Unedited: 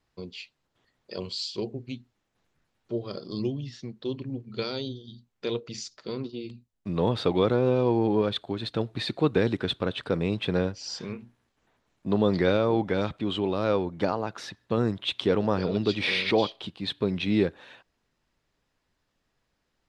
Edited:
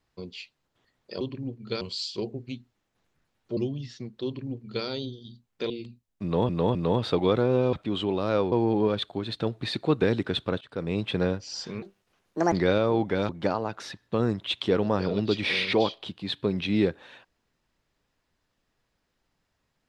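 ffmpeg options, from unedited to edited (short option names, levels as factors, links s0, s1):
-filter_complex "[0:a]asplit=13[s0][s1][s2][s3][s4][s5][s6][s7][s8][s9][s10][s11][s12];[s0]atrim=end=1.212[s13];[s1]atrim=start=4.078:end=4.682[s14];[s2]atrim=start=1.208:end=2.972[s15];[s3]atrim=start=3.398:end=5.532[s16];[s4]atrim=start=6.348:end=7.142[s17];[s5]atrim=start=6.878:end=7.142[s18];[s6]atrim=start=6.878:end=7.862[s19];[s7]atrim=start=13.078:end=13.872[s20];[s8]atrim=start=7.858:end=9.95,asetpts=PTS-STARTPTS,afade=t=out:st=2.088:d=0.004:c=hsin:silence=0.0841395[s21];[s9]atrim=start=9.95:end=11.164,asetpts=PTS-STARTPTS,afade=t=in:d=0.38:silence=0.0841395[s22];[s10]atrim=start=11.16:end=12.31,asetpts=PTS-STARTPTS,asetrate=72324,aresample=44100[s23];[s11]atrim=start=12.306:end=13.082[s24];[s12]atrim=start=13.868[s25];[s13][s14]acrossfade=d=0.004:c1=hsin:c2=hsin[s26];[s26][s15]acrossfade=d=0.004:c1=hsin:c2=hsin[s27];[s27][s16]acrossfade=d=0.004:c1=hsin:c2=hsin[s28];[s28][s17]acrossfade=d=0.004:c1=hsin:c2=hsin[s29];[s29][s18]acrossfade=d=0.004:c1=hsin:c2=hsin[s30];[s30][s19]acrossfade=d=0.004:c1=hsin:c2=hsin[s31];[s31][s20]acrossfade=d=0.004:c1=hsin:c2=hsin[s32];[s21][s22]concat=n=2:v=0:a=1[s33];[s32][s33]acrossfade=d=0.004:c1=hsin:c2=hsin[s34];[s34][s23]acrossfade=d=0.004:c1=hsin:c2=hsin[s35];[s35][s24]acrossfade=d=0.004:c1=hsin:c2=hsin[s36];[s36][s25]acrossfade=d=0.004:c1=hsin:c2=hsin"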